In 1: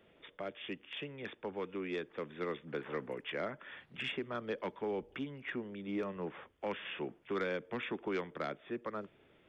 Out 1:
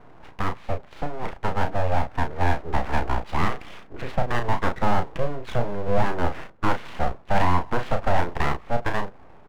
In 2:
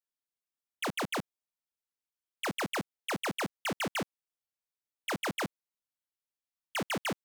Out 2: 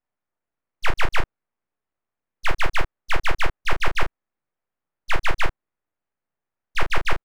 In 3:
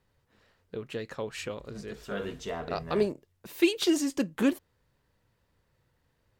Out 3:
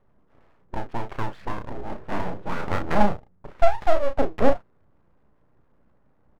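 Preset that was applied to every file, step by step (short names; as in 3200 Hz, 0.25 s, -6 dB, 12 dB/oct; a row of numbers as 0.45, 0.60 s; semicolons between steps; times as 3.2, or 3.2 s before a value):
LPF 1300 Hz 24 dB/oct; low shelf 330 Hz +2.5 dB; full-wave rectifier; doubler 34 ms -6.5 dB; match loudness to -27 LUFS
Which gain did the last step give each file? +17.5, +17.5, +8.0 dB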